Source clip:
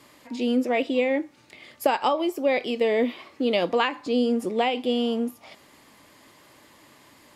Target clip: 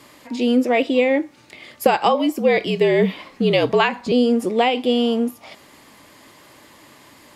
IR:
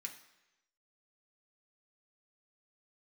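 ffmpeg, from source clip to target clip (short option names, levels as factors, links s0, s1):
-filter_complex "[0:a]asettb=1/sr,asplit=3[s0][s1][s2];[s0]atrim=end=1.844[s3];[s1]atrim=start=1.84:end=4.12,asetpts=PTS-STARTPTS,afade=t=in:d=0.004:c=qsin,afade=t=out:st=2.276:d=0.004:c=qsin,afreqshift=-52[s4];[s2]atrim=start=4.116[s5];[s3][s4]acrossfade=d=0.004:c1=hsin:c2=qsin[s6];[s6][s5]acrossfade=d=0.004:c1=qsin:c2=hsin,volume=2"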